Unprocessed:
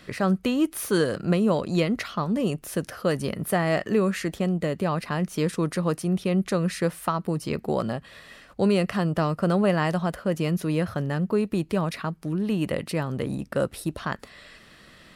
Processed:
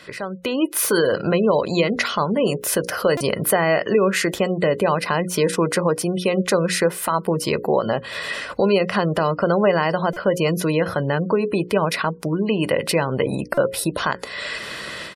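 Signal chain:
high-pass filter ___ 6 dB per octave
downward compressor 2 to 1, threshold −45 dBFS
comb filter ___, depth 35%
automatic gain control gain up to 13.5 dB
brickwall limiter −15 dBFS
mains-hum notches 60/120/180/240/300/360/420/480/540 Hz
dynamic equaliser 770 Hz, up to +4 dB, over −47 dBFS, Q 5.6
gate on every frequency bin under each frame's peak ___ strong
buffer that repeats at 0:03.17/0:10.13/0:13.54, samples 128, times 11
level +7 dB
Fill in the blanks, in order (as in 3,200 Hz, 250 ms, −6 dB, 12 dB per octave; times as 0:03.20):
280 Hz, 2 ms, −30 dB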